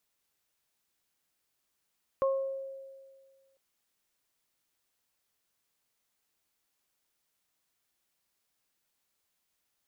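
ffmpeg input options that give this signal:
ffmpeg -f lavfi -i "aevalsrc='0.0668*pow(10,-3*t/1.78)*sin(2*PI*540*t)+0.0335*pow(10,-3*t/0.5)*sin(2*PI*1080*t)':duration=1.35:sample_rate=44100" out.wav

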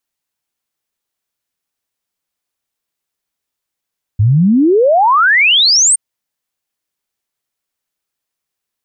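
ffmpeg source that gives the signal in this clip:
ffmpeg -f lavfi -i "aevalsrc='0.473*clip(min(t,1.77-t)/0.01,0,1)*sin(2*PI*97*1.77/log(9000/97)*(exp(log(9000/97)*t/1.77)-1))':duration=1.77:sample_rate=44100" out.wav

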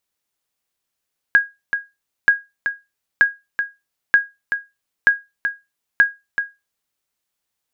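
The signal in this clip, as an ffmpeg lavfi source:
ffmpeg -f lavfi -i "aevalsrc='0.631*(sin(2*PI*1640*mod(t,0.93))*exp(-6.91*mod(t,0.93)/0.22)+0.376*sin(2*PI*1640*max(mod(t,0.93)-0.38,0))*exp(-6.91*max(mod(t,0.93)-0.38,0)/0.22))':duration=5.58:sample_rate=44100" out.wav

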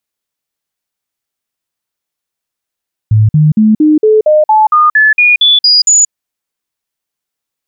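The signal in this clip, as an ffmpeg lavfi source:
ffmpeg -f lavfi -i "aevalsrc='0.668*clip(min(mod(t,0.23),0.18-mod(t,0.23))/0.005,0,1)*sin(2*PI*108*pow(2,floor(t/0.23)/2)*mod(t,0.23))':duration=2.99:sample_rate=44100" out.wav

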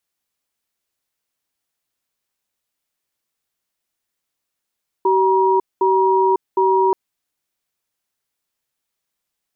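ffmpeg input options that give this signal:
ffmpeg -f lavfi -i "aevalsrc='0.178*(sin(2*PI*382*t)+sin(2*PI*953*t))*clip(min(mod(t,0.76),0.55-mod(t,0.76))/0.005,0,1)':duration=1.88:sample_rate=44100" out.wav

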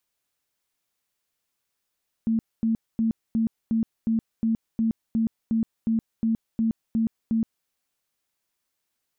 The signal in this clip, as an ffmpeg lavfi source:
ffmpeg -f lavfi -i "aevalsrc='0.106*sin(2*PI*225*mod(t,0.36))*lt(mod(t,0.36),27/225)':duration=5.4:sample_rate=44100" out.wav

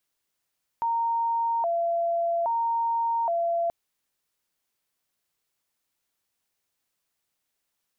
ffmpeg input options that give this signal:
ffmpeg -f lavfi -i "aevalsrc='0.075*sin(2*PI*(802.5*t+122.5/0.61*(0.5-abs(mod(0.61*t,1)-0.5))))':duration=2.88:sample_rate=44100" out.wav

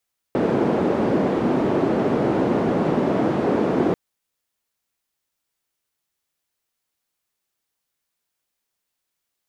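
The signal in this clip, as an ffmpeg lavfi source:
ffmpeg -f lavfi -i "anoisesrc=color=white:duration=3.59:sample_rate=44100:seed=1,highpass=frequency=240,lowpass=frequency=330,volume=6.8dB" out.wav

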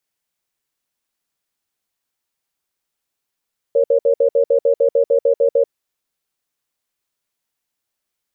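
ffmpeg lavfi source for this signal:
ffmpeg -f lavfi -i "aevalsrc='0.211*(sin(2*PI*471*t)+sin(2*PI*554*t))*clip(min(mod(t,0.15),0.09-mod(t,0.15))/0.005,0,1)':duration=1.9:sample_rate=44100" out.wav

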